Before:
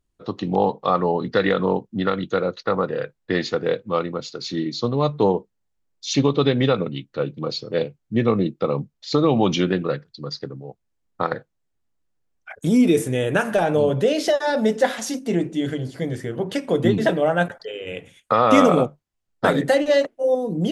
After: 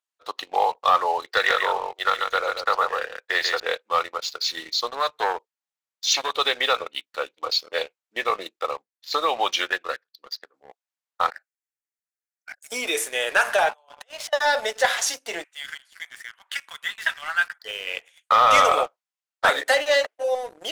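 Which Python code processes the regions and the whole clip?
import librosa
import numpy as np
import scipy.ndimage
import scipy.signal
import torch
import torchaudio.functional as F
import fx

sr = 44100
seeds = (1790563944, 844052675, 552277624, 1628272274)

y = fx.chain(x, sr, fx.ellip_highpass(hz=350.0, order=4, stop_db=40),
    fx.echo_single(ms=140, db=-6.0), at=(1.26, 3.6))
y = fx.chain(y, sr, fx.low_shelf(hz=320.0, db=-5.5),
    fx.transformer_sat(knee_hz=640.0), at=(4.9, 6.35))
y = fx.chain(y, sr, fx.peak_eq(hz=1700.0, db=5.0, octaves=0.26),
    fx.upward_expand(threshold_db=-34.0, expansion=1.5), at=(8.59, 10.54))
y = fx.chain(y, sr, fx.tone_stack(knobs='10-0-10'),
    fx.over_compress(threshold_db=-38.0, ratio=-0.5),
    fx.fixed_phaser(hz=690.0, stages=8), at=(11.3, 12.72))
y = fx.chain(y, sr, fx.over_compress(threshold_db=-24.0, ratio=-0.5),
    fx.ladder_highpass(hz=700.0, resonance_pct=50),
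    fx.dynamic_eq(hz=4900.0, q=1.2, threshold_db=-49.0, ratio=4.0, max_db=-7), at=(13.69, 14.33))
y = fx.chain(y, sr, fx.highpass(hz=1300.0, slope=24),
    fx.peak_eq(hz=5200.0, db=-8.0, octaves=1.2), at=(15.44, 17.63))
y = scipy.signal.sosfilt(scipy.signal.bessel(4, 1000.0, 'highpass', norm='mag', fs=sr, output='sos'), y)
y = fx.high_shelf(y, sr, hz=9300.0, db=-4.0)
y = fx.leveller(y, sr, passes=2)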